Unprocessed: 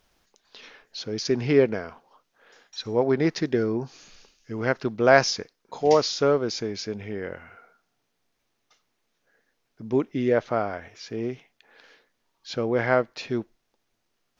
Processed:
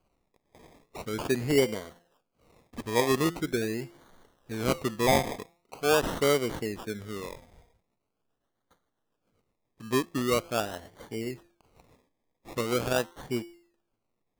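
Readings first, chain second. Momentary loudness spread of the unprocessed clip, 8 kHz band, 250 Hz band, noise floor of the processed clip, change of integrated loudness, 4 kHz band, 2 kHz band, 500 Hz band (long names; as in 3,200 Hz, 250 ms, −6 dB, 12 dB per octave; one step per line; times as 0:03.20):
17 LU, can't be measured, −4.0 dB, −81 dBFS, −4.5 dB, −2.5 dB, −4.5 dB, −5.5 dB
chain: rotating-speaker cabinet horn 0.6 Hz, later 7.5 Hz, at 0:06.99
hum removal 172 Hz, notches 18
sample-and-hold swept by an LFO 24×, swing 60% 0.43 Hz
level −2.5 dB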